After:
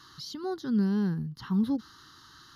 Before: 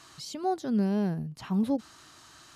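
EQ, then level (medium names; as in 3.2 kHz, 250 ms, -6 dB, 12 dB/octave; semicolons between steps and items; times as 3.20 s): static phaser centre 2.4 kHz, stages 6; +2.0 dB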